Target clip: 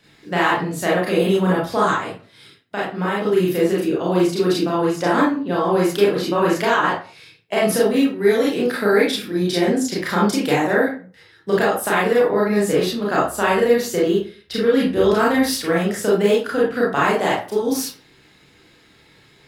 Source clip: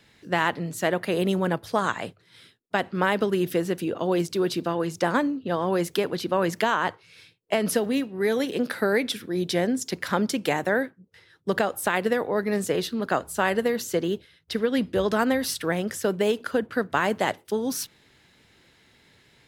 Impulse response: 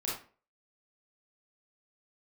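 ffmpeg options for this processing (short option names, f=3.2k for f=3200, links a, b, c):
-filter_complex "[0:a]asplit=3[a][b][c];[a]afade=t=out:st=1.97:d=0.02[d];[b]acompressor=threshold=-33dB:ratio=1.5,afade=t=in:st=1.97:d=0.02,afade=t=out:st=3.27:d=0.02[e];[c]afade=t=in:st=3.27:d=0.02[f];[d][e][f]amix=inputs=3:normalize=0[g];[1:a]atrim=start_sample=2205[h];[g][h]afir=irnorm=-1:irlink=0,volume=2.5dB"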